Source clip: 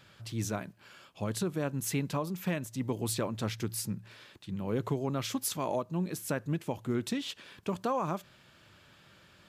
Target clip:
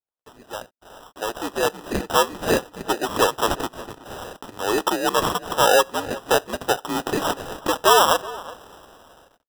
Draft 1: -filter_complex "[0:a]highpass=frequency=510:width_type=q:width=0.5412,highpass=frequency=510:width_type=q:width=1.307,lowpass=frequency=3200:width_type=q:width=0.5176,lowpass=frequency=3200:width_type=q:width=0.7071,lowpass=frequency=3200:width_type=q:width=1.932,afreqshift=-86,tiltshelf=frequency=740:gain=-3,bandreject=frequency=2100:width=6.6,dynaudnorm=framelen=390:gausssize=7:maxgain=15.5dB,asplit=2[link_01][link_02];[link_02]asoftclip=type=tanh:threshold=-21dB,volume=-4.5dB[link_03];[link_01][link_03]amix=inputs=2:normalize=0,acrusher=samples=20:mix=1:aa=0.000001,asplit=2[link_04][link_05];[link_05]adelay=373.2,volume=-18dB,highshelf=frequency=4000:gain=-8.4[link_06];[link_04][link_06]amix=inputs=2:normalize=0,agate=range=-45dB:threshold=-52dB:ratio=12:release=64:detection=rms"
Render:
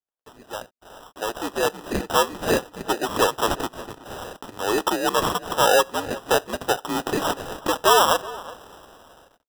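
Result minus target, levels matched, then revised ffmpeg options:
soft clipping: distortion +8 dB
-filter_complex "[0:a]highpass=frequency=510:width_type=q:width=0.5412,highpass=frequency=510:width_type=q:width=1.307,lowpass=frequency=3200:width_type=q:width=0.5176,lowpass=frequency=3200:width_type=q:width=0.7071,lowpass=frequency=3200:width_type=q:width=1.932,afreqshift=-86,tiltshelf=frequency=740:gain=-3,bandreject=frequency=2100:width=6.6,dynaudnorm=framelen=390:gausssize=7:maxgain=15.5dB,asplit=2[link_01][link_02];[link_02]asoftclip=type=tanh:threshold=-13dB,volume=-4.5dB[link_03];[link_01][link_03]amix=inputs=2:normalize=0,acrusher=samples=20:mix=1:aa=0.000001,asplit=2[link_04][link_05];[link_05]adelay=373.2,volume=-18dB,highshelf=frequency=4000:gain=-8.4[link_06];[link_04][link_06]amix=inputs=2:normalize=0,agate=range=-45dB:threshold=-52dB:ratio=12:release=64:detection=rms"

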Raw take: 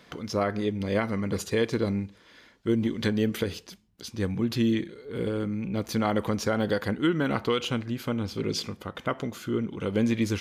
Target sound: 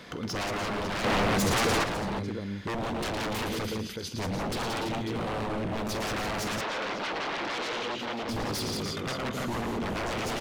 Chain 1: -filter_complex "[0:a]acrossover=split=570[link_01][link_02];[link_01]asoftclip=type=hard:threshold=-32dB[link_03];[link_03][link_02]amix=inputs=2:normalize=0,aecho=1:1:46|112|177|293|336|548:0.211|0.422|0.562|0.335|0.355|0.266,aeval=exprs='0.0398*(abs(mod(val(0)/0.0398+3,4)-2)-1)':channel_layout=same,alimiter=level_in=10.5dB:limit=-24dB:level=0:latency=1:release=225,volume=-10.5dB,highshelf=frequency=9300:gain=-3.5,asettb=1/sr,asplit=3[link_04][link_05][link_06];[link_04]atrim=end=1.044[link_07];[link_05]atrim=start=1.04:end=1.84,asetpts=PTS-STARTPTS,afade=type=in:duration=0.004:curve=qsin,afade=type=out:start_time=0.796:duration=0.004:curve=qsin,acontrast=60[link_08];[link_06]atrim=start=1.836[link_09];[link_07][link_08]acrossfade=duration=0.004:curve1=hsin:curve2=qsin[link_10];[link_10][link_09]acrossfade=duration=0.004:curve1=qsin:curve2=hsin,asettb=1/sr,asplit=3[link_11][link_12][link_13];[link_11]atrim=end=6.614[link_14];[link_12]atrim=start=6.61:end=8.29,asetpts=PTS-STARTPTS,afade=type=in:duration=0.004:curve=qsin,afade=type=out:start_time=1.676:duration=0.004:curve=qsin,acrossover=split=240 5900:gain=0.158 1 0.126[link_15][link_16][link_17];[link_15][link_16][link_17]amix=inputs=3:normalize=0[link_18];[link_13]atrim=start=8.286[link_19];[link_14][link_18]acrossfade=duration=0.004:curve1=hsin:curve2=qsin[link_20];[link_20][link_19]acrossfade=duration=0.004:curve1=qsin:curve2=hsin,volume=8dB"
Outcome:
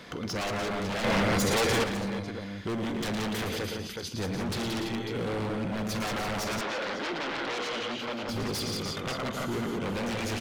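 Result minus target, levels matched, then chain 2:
hard clipping: distortion +15 dB
-filter_complex "[0:a]acrossover=split=570[link_01][link_02];[link_01]asoftclip=type=hard:threshold=-20.5dB[link_03];[link_03][link_02]amix=inputs=2:normalize=0,aecho=1:1:46|112|177|293|336|548:0.211|0.422|0.562|0.335|0.355|0.266,aeval=exprs='0.0398*(abs(mod(val(0)/0.0398+3,4)-2)-1)':channel_layout=same,alimiter=level_in=10.5dB:limit=-24dB:level=0:latency=1:release=225,volume=-10.5dB,highshelf=frequency=9300:gain=-3.5,asettb=1/sr,asplit=3[link_04][link_05][link_06];[link_04]atrim=end=1.044[link_07];[link_05]atrim=start=1.04:end=1.84,asetpts=PTS-STARTPTS,afade=type=in:duration=0.004:curve=qsin,afade=type=out:start_time=0.796:duration=0.004:curve=qsin,acontrast=60[link_08];[link_06]atrim=start=1.836[link_09];[link_07][link_08]acrossfade=duration=0.004:curve1=hsin:curve2=qsin[link_10];[link_10][link_09]acrossfade=duration=0.004:curve1=qsin:curve2=hsin,asettb=1/sr,asplit=3[link_11][link_12][link_13];[link_11]atrim=end=6.614[link_14];[link_12]atrim=start=6.61:end=8.29,asetpts=PTS-STARTPTS,afade=type=in:duration=0.004:curve=qsin,afade=type=out:start_time=1.676:duration=0.004:curve=qsin,acrossover=split=240 5900:gain=0.158 1 0.126[link_15][link_16][link_17];[link_15][link_16][link_17]amix=inputs=3:normalize=0[link_18];[link_13]atrim=start=8.286[link_19];[link_14][link_18]acrossfade=duration=0.004:curve1=hsin:curve2=qsin[link_20];[link_20][link_19]acrossfade=duration=0.004:curve1=qsin:curve2=hsin,volume=8dB"

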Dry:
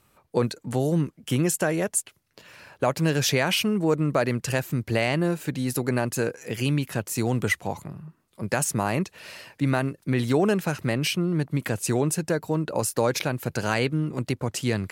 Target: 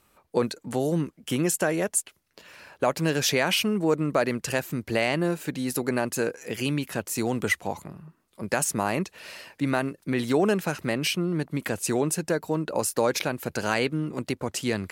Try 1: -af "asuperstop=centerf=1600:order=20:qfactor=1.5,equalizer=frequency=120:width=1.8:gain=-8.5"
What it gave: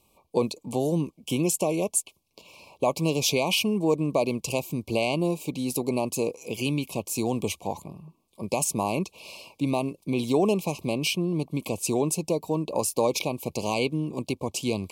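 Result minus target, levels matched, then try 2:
2,000 Hz band −5.5 dB
-af "equalizer=frequency=120:width=1.8:gain=-8.5"

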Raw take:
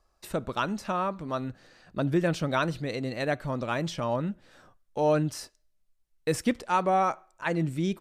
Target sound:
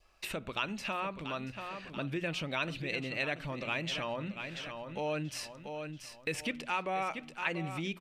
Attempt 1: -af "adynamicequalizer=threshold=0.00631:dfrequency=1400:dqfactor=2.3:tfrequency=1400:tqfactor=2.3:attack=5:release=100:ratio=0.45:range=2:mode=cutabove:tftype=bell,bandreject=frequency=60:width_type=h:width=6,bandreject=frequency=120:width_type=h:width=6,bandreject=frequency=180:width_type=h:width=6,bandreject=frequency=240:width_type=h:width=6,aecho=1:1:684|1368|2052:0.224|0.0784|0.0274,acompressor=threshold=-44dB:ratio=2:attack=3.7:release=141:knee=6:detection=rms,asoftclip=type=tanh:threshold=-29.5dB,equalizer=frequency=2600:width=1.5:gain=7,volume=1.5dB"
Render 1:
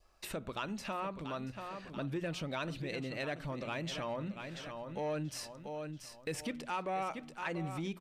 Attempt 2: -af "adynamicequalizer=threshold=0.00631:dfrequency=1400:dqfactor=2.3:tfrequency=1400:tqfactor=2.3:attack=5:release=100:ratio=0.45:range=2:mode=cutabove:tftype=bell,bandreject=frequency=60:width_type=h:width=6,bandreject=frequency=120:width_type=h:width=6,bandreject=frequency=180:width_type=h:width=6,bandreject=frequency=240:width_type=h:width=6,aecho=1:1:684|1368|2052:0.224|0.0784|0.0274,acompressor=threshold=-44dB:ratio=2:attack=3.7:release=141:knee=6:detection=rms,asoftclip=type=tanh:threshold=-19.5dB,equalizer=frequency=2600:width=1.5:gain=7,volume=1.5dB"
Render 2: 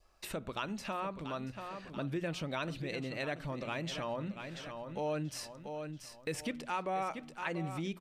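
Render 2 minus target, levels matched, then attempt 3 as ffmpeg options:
2,000 Hz band −4.0 dB
-af "adynamicequalizer=threshold=0.00631:dfrequency=1400:dqfactor=2.3:tfrequency=1400:tqfactor=2.3:attack=5:release=100:ratio=0.45:range=2:mode=cutabove:tftype=bell,bandreject=frequency=60:width_type=h:width=6,bandreject=frequency=120:width_type=h:width=6,bandreject=frequency=180:width_type=h:width=6,bandreject=frequency=240:width_type=h:width=6,aecho=1:1:684|1368|2052:0.224|0.0784|0.0274,acompressor=threshold=-44dB:ratio=2:attack=3.7:release=141:knee=6:detection=rms,asoftclip=type=tanh:threshold=-19.5dB,equalizer=frequency=2600:width=1.5:gain=16,volume=1.5dB"

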